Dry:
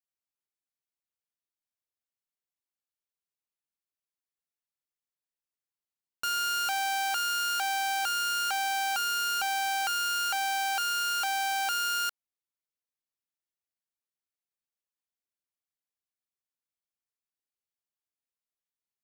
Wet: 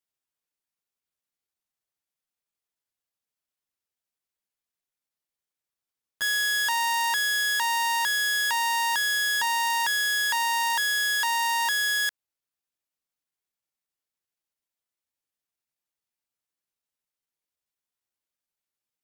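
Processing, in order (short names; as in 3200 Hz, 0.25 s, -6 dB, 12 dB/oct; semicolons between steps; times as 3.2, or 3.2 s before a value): pitch shift +3 st; gain +4.5 dB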